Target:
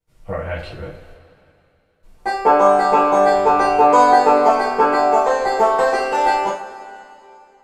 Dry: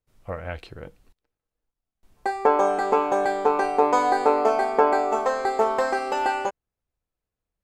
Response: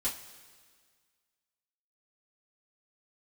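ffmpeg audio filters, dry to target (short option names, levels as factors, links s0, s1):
-filter_complex "[0:a]asettb=1/sr,asplit=3[s0][s1][s2];[s0]atrim=end=4.474[s3];[s1]atrim=start=4.47:end=4.97,asetpts=PTS-STARTPTS,afade=t=in:d=0.004:c=qsin,afade=t=out:st=0.496:d=0.004:c=qsin,equalizer=f=660:w=3.8:g=-11.5[s4];[s2]atrim=start=4.966[s5];[s3][s4]acrossfade=d=0.004:c1=hsin:c2=qsin[s6];[s6][s5]acrossfade=d=0.004:c1=qsin:c2=hsin[s7];[1:a]atrim=start_sample=2205,asetrate=28224,aresample=44100[s8];[s7][s8]afir=irnorm=-1:irlink=0,asettb=1/sr,asplit=3[s9][s10][s11];[s9]atrim=end=3.354[s12];[s10]atrim=start=3.35:end=3.87,asetpts=PTS-STARTPTS,afade=t=in:d=0.004:c=qsin,afade=t=out:st=0.516:d=0.004:c=qsin,aeval=exprs='val(0)+0.00891*(sin(2*PI*60*n/s)+sin(2*PI*2*60*n/s)/2+sin(2*PI*3*60*n/s)/3+sin(2*PI*4*60*n/s)/4+sin(2*PI*5*60*n/s)/5)':c=same[s13];[s11]atrim=start=3.866[s14];[s12][s13]acrossfade=d=0.004:c1=hsin:c2=qsin[s15];[s15][s14]acrossfade=d=0.004:c1=qsin:c2=hsin,volume=0.891"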